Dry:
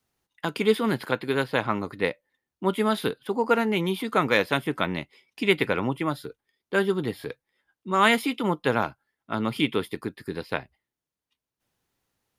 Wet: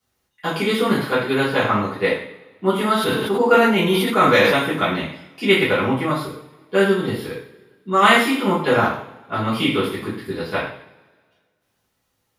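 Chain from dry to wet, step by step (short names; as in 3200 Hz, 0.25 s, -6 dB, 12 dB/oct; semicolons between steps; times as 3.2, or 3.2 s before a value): two-slope reverb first 0.57 s, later 1.8 s, from -21 dB, DRR -9.5 dB; 2.97–4.57 sustainer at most 31 dB/s; gain -3 dB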